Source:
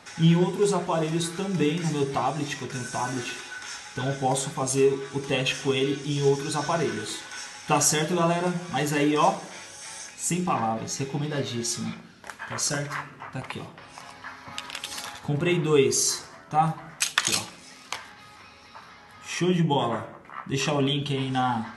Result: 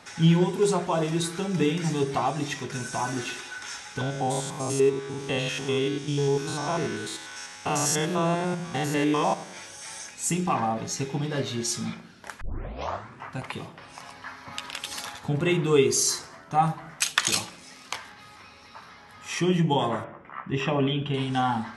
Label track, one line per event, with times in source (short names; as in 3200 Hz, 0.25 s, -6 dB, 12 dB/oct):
4.010000	9.570000	stepped spectrum every 0.1 s
12.410000	12.410000	tape start 0.82 s
20.040000	21.140000	polynomial smoothing over 25 samples